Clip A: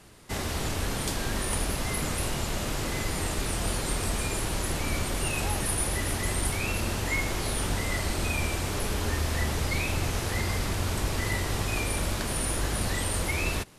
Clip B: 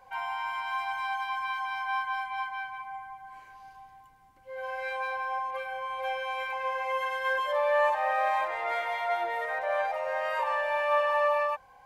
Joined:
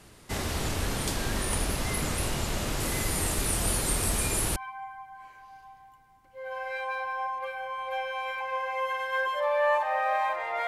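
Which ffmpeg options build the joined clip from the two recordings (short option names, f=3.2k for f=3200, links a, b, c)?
-filter_complex "[0:a]asettb=1/sr,asplit=3[a][b][c];[a]atrim=end=2.804[d];[b]atrim=start=2.8:end=4.56,asetpts=PTS-STARTPTS,afade=t=in:d=0.004:c=qsin,afade=t=out:st=1.756:d=0.004:c=qsin,equalizer=f=11k:w=1.1:g=8.5[e];[c]atrim=start=4.556[f];[d][e]acrossfade=d=0.004:c1=hsin:c2=qsin[g];[g][f]acrossfade=d=0.004:c1=qsin:c2=hsin,apad=whole_dur=10.67,atrim=end=10.67,atrim=end=4.562[h];[1:a]atrim=start=2.678:end=8.79[i];[h][i]acrossfade=d=0.004:c1=hsin:c2=hsin"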